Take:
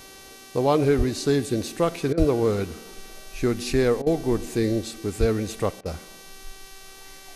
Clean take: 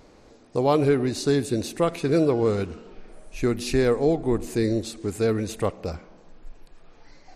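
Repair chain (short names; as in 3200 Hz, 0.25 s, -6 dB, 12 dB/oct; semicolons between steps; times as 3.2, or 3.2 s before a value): de-hum 386.5 Hz, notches 17; 0.97–1.09 HPF 140 Hz 24 dB/oct; 2.18–2.3 HPF 140 Hz 24 dB/oct; 5.19–5.31 HPF 140 Hz 24 dB/oct; interpolate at 2.13/4.02/5.81, 44 ms; noise print and reduce 6 dB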